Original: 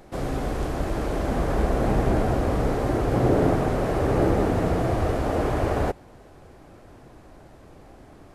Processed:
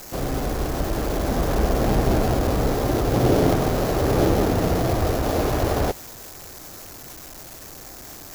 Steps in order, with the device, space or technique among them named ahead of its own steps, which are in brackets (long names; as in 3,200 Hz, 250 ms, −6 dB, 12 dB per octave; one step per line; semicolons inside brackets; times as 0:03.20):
budget class-D amplifier (gap after every zero crossing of 0.15 ms; spike at every zero crossing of −23.5 dBFS)
level +2 dB